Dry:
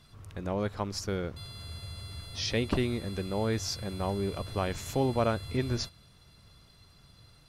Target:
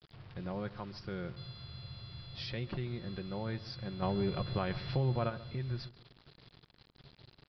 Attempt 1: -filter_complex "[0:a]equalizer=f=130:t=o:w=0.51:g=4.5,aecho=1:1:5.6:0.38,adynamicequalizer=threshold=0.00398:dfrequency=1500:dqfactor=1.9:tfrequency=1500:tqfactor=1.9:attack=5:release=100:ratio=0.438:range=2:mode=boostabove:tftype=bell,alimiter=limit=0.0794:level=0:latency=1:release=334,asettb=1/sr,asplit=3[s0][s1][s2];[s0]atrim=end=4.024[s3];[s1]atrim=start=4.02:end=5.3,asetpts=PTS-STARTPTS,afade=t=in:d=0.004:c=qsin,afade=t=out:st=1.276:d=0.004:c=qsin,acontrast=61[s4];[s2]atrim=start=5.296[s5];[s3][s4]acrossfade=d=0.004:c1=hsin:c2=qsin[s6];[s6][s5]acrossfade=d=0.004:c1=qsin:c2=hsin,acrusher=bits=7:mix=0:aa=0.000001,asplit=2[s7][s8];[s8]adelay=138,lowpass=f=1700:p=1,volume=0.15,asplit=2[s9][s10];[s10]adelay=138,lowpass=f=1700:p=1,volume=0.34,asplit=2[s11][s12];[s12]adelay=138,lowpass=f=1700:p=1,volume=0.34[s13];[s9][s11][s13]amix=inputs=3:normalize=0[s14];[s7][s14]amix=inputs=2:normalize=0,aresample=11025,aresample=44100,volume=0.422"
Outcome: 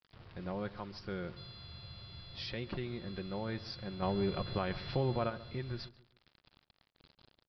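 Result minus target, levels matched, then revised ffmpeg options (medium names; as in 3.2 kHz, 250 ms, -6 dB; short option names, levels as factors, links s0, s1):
125 Hz band -2.5 dB
-filter_complex "[0:a]equalizer=f=130:t=o:w=0.51:g=12,aecho=1:1:5.6:0.38,adynamicequalizer=threshold=0.00398:dfrequency=1500:dqfactor=1.9:tfrequency=1500:tqfactor=1.9:attack=5:release=100:ratio=0.438:range=2:mode=boostabove:tftype=bell,alimiter=limit=0.0794:level=0:latency=1:release=334,asettb=1/sr,asplit=3[s0][s1][s2];[s0]atrim=end=4.024[s3];[s1]atrim=start=4.02:end=5.3,asetpts=PTS-STARTPTS,afade=t=in:d=0.004:c=qsin,afade=t=out:st=1.276:d=0.004:c=qsin,acontrast=61[s4];[s2]atrim=start=5.296[s5];[s3][s4]acrossfade=d=0.004:c1=hsin:c2=qsin[s6];[s6][s5]acrossfade=d=0.004:c1=qsin:c2=hsin,acrusher=bits=7:mix=0:aa=0.000001,asplit=2[s7][s8];[s8]adelay=138,lowpass=f=1700:p=1,volume=0.15,asplit=2[s9][s10];[s10]adelay=138,lowpass=f=1700:p=1,volume=0.34,asplit=2[s11][s12];[s12]adelay=138,lowpass=f=1700:p=1,volume=0.34[s13];[s9][s11][s13]amix=inputs=3:normalize=0[s14];[s7][s14]amix=inputs=2:normalize=0,aresample=11025,aresample=44100,volume=0.422"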